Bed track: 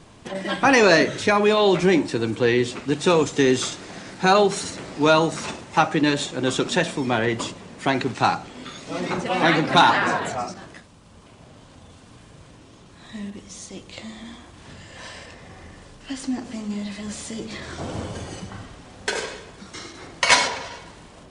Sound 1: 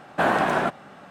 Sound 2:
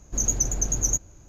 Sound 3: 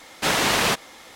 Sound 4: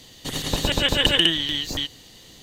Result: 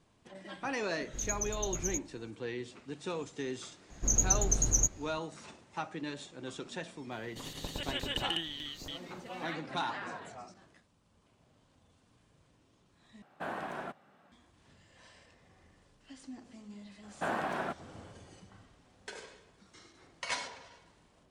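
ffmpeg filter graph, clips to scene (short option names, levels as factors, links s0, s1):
-filter_complex "[2:a]asplit=2[s0][s1];[1:a]asplit=2[s2][s3];[0:a]volume=0.1[s4];[s1]equalizer=f=12000:w=1.4:g=-5[s5];[s4]asplit=2[s6][s7];[s6]atrim=end=13.224[s8];[s2]atrim=end=1.1,asetpts=PTS-STARTPTS,volume=0.126[s9];[s7]atrim=start=14.316[s10];[s0]atrim=end=1.28,asetpts=PTS-STARTPTS,volume=0.237,afade=t=in:d=0.004:c=hsin,afade=t=out:st=1.276:d=0.004:c=hsin,adelay=1010[s11];[s5]atrim=end=1.28,asetpts=PTS-STARTPTS,volume=0.708,afade=t=in:d=0.004:c=hsin,afade=t=out:st=1.276:d=0.004:c=hsin,adelay=3900[s12];[4:a]atrim=end=2.42,asetpts=PTS-STARTPTS,volume=0.15,afade=t=in:d=0.004:c=hsin,afade=t=out:st=2.416:d=0.004:c=hsin,adelay=7110[s13];[s3]atrim=end=1.1,asetpts=PTS-STARTPTS,volume=0.224,afade=t=in:d=0.004:c=hsin,afade=t=out:st=1.096:d=0.004:c=hsin,adelay=17030[s14];[s8][s9]acrossfade=d=0.004:c1=hsin:c2=hsin[s15];[s15][s10]acrossfade=d=0.004:c1=hsin:c2=hsin[s16];[s16][s11][s12][s13][s14]amix=inputs=5:normalize=0"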